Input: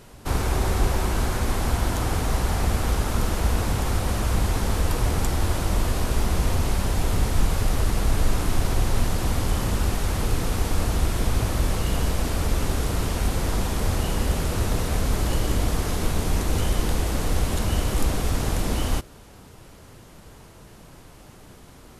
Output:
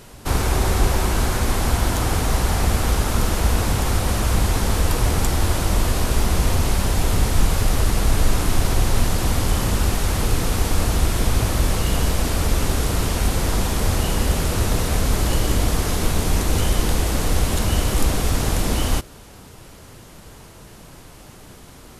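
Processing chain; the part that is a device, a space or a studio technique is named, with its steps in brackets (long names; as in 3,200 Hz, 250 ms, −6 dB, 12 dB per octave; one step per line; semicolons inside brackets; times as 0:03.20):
exciter from parts (in parallel at −6.5 dB: high-pass filter 3,000 Hz 6 dB per octave + soft clipping −28 dBFS, distortion −21 dB)
on the sum: level +3.5 dB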